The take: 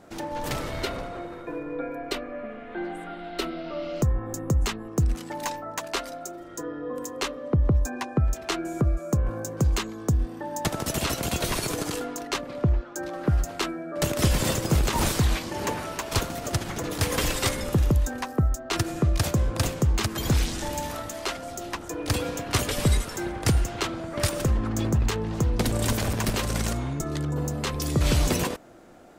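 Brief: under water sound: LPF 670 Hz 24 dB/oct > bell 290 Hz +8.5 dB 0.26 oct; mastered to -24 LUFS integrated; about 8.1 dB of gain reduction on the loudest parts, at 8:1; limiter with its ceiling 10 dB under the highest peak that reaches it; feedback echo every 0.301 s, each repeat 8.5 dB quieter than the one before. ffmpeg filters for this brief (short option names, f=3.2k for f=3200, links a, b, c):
-af "acompressor=threshold=-26dB:ratio=8,alimiter=level_in=0.5dB:limit=-24dB:level=0:latency=1,volume=-0.5dB,lowpass=f=670:w=0.5412,lowpass=f=670:w=1.3066,equalizer=f=290:t=o:w=0.26:g=8.5,aecho=1:1:301|602|903|1204:0.376|0.143|0.0543|0.0206,volume=10dB"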